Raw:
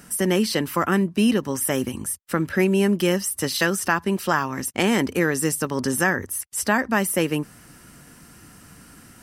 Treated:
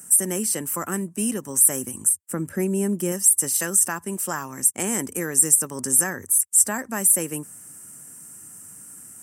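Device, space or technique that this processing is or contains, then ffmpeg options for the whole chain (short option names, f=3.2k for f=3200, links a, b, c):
budget condenser microphone: -filter_complex "[0:a]asettb=1/sr,asplit=3[a][b][c];[a]atrim=end=2.094[d];[b]atrim=start=2.09:end=3.12,asetpts=PTS-STARTPTS,afade=t=in:d=0.004:c=qsin,afade=t=out:st=1.026:d=0.004:c=qsin,tiltshelf=f=760:g=4.5[e];[c]atrim=start=3.116[f];[d][e]acrossfade=d=0.004:c1=hsin:c2=qsin[g];[g][f]acrossfade=d=0.004:c1=qsin:c2=hsin,highpass=f=86:w=0.5412,highpass=f=86:w=1.3066,highshelf=f=5.8k:t=q:w=3:g=13,volume=-7.5dB"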